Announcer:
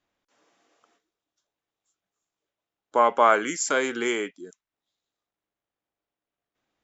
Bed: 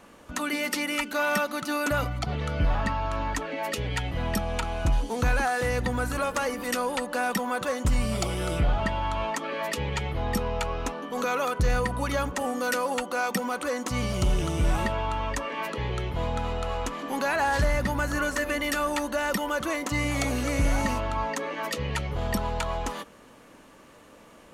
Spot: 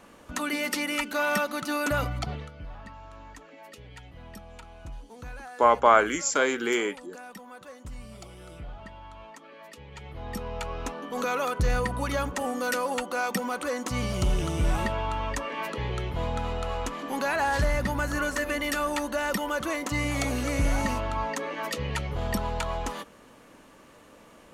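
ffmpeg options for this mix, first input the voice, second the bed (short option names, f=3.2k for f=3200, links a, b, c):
-filter_complex "[0:a]adelay=2650,volume=0dB[a];[1:a]volume=15.5dB,afade=t=out:st=2.19:d=0.32:silence=0.149624,afade=t=in:st=9.88:d=1.3:silence=0.158489[b];[a][b]amix=inputs=2:normalize=0"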